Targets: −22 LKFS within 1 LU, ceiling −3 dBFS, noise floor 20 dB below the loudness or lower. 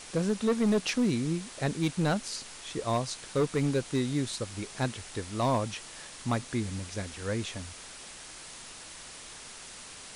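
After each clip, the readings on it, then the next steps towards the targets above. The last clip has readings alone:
share of clipped samples 1.0%; peaks flattened at −21.0 dBFS; background noise floor −46 dBFS; target noise floor −51 dBFS; integrated loudness −31.0 LKFS; sample peak −21.0 dBFS; target loudness −22.0 LKFS
→ clipped peaks rebuilt −21 dBFS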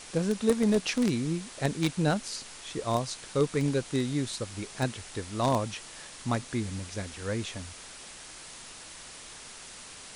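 share of clipped samples 0.0%; background noise floor −46 dBFS; target noise floor −51 dBFS
→ broadband denoise 6 dB, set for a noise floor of −46 dBFS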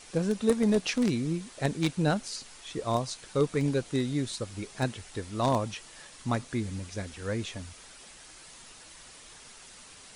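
background noise floor −51 dBFS; integrated loudness −30.5 LKFS; sample peak −12.0 dBFS; target loudness −22.0 LKFS
→ level +8.5 dB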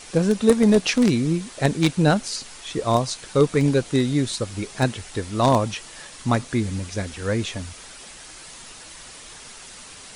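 integrated loudness −22.0 LKFS; sample peak −3.5 dBFS; background noise floor −42 dBFS

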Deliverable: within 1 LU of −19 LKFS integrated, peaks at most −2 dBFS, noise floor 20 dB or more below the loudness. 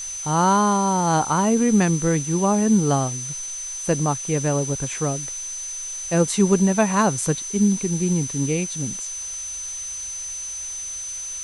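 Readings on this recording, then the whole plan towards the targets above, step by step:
interfering tone 6,100 Hz; level of the tone −29 dBFS; background noise floor −32 dBFS; target noise floor −42 dBFS; integrated loudness −22.0 LKFS; sample peak −6.0 dBFS; target loudness −19.0 LKFS
→ notch filter 6,100 Hz, Q 30
broadband denoise 10 dB, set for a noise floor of −32 dBFS
level +3 dB

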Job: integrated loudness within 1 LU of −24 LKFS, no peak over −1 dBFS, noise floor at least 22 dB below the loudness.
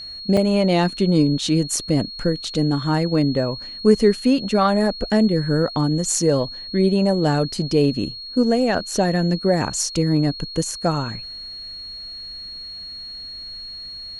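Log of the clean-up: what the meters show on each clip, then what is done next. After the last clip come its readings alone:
number of dropouts 1; longest dropout 4.6 ms; interfering tone 4,300 Hz; level of the tone −32 dBFS; integrated loudness −20.0 LKFS; sample peak −3.5 dBFS; target loudness −24.0 LKFS
→ repair the gap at 0:00.37, 4.6 ms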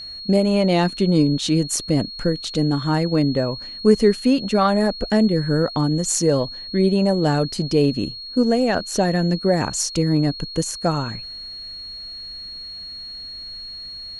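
number of dropouts 0; interfering tone 4,300 Hz; level of the tone −32 dBFS
→ notch filter 4,300 Hz, Q 30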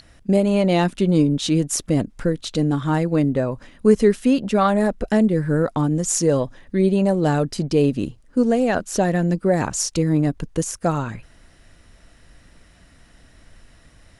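interfering tone none found; integrated loudness −20.0 LKFS; sample peak −3.5 dBFS; target loudness −24.0 LKFS
→ level −4 dB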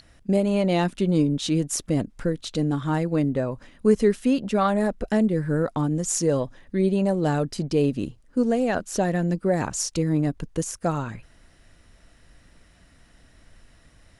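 integrated loudness −24.0 LKFS; sample peak −7.5 dBFS; background noise floor −56 dBFS

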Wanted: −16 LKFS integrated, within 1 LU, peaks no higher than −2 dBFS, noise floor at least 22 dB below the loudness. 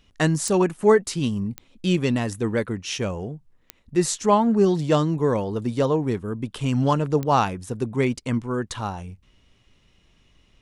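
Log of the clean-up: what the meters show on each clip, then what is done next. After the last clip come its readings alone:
number of clicks 4; integrated loudness −23.0 LKFS; sample peak −6.0 dBFS; target loudness −16.0 LKFS
→ click removal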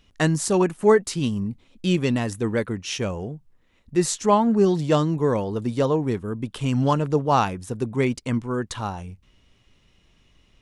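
number of clicks 0; integrated loudness −23.0 LKFS; sample peak −6.0 dBFS; target loudness −16.0 LKFS
→ level +7 dB
brickwall limiter −2 dBFS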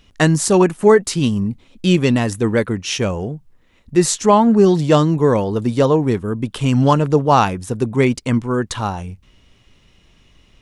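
integrated loudness −16.5 LKFS; sample peak −2.0 dBFS; background noise floor −54 dBFS

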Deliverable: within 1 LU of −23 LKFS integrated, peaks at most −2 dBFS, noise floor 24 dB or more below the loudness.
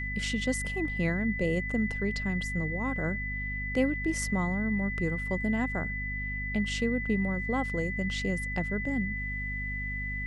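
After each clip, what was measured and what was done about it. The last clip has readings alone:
mains hum 50 Hz; hum harmonics up to 250 Hz; level of the hum −34 dBFS; interfering tone 2,000 Hz; level of the tone −34 dBFS; integrated loudness −30.5 LKFS; sample peak −14.0 dBFS; target loudness −23.0 LKFS
→ mains-hum notches 50/100/150/200/250 Hz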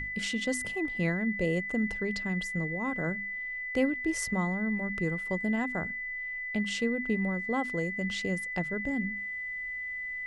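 mains hum none found; interfering tone 2,000 Hz; level of the tone −34 dBFS
→ notch filter 2,000 Hz, Q 30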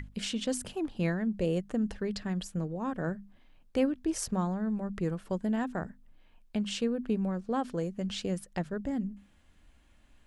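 interfering tone none found; integrated loudness −33.0 LKFS; sample peak −16.5 dBFS; target loudness −23.0 LKFS
→ level +10 dB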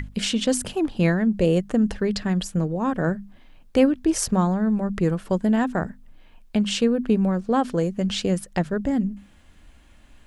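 integrated loudness −23.0 LKFS; sample peak −6.5 dBFS; background noise floor −52 dBFS

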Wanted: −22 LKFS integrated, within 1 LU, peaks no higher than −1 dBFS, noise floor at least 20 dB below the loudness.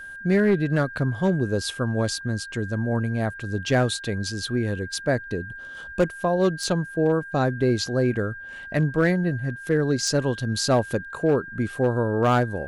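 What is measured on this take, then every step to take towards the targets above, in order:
share of clipped samples 0.6%; peaks flattened at −13.0 dBFS; interfering tone 1,600 Hz; level of the tone −36 dBFS; integrated loudness −24.0 LKFS; sample peak −13.0 dBFS; target loudness −22.0 LKFS
→ clipped peaks rebuilt −13 dBFS
notch filter 1,600 Hz, Q 30
level +2 dB

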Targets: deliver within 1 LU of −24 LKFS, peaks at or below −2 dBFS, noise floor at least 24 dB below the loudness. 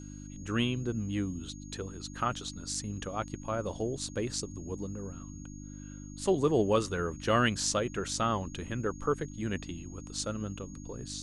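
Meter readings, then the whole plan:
mains hum 50 Hz; hum harmonics up to 300 Hz; level of the hum −42 dBFS; interfering tone 6,600 Hz; level of the tone −53 dBFS; integrated loudness −33.0 LKFS; sample peak −13.0 dBFS; target loudness −24.0 LKFS
→ hum removal 50 Hz, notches 6
notch filter 6,600 Hz, Q 30
level +9 dB

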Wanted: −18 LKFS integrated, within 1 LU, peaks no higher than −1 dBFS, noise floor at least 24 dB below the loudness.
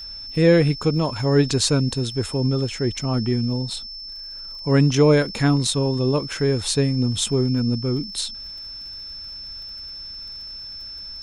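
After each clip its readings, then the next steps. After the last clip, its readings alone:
crackle rate 45 per second; interfering tone 5,300 Hz; level of the tone −33 dBFS; integrated loudness −20.5 LKFS; sample peak −4.0 dBFS; target loudness −18.0 LKFS
→ click removal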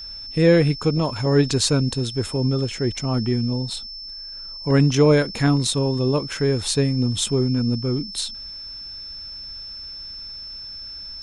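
crackle rate 0.089 per second; interfering tone 5,300 Hz; level of the tone −33 dBFS
→ notch filter 5,300 Hz, Q 30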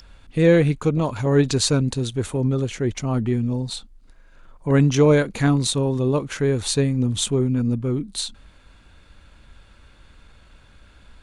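interfering tone none found; integrated loudness −21.0 LKFS; sample peak −4.5 dBFS; target loudness −18.0 LKFS
→ level +3 dB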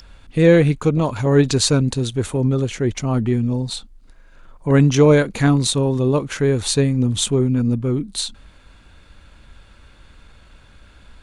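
integrated loudness −18.0 LKFS; sample peak −1.5 dBFS; background noise floor −48 dBFS

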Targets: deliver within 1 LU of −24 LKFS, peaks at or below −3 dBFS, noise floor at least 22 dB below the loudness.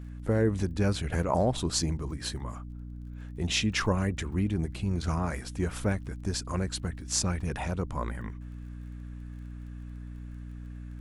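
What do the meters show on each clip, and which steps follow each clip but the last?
crackle rate 26 per second; mains hum 60 Hz; hum harmonics up to 300 Hz; level of the hum −38 dBFS; integrated loudness −30.5 LKFS; sample peak −10.0 dBFS; target loudness −24.0 LKFS
→ click removal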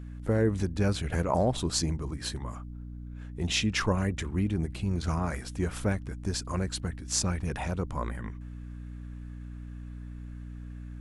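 crackle rate 0 per second; mains hum 60 Hz; hum harmonics up to 300 Hz; level of the hum −38 dBFS
→ hum removal 60 Hz, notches 5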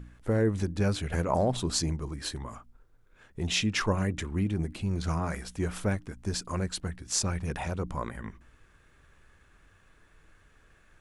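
mains hum none found; integrated loudness −30.5 LKFS; sample peak −10.0 dBFS; target loudness −24.0 LKFS
→ level +6.5 dB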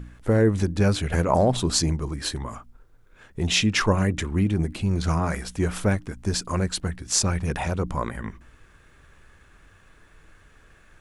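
integrated loudness −24.0 LKFS; sample peak −3.5 dBFS; background noise floor −55 dBFS

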